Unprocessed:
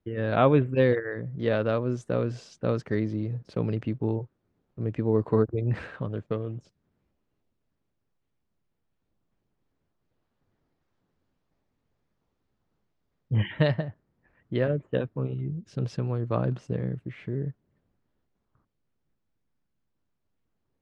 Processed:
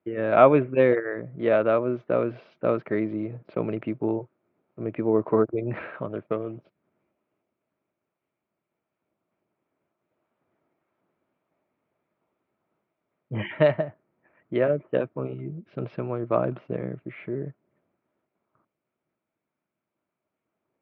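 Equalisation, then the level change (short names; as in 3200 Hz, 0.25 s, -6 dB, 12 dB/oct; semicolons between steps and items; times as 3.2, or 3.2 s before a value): air absorption 190 m; speaker cabinet 170–3800 Hz, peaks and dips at 350 Hz +6 dB, 630 Hz +10 dB, 950 Hz +4 dB, 1300 Hz +7 dB, 2300 Hz +9 dB; 0.0 dB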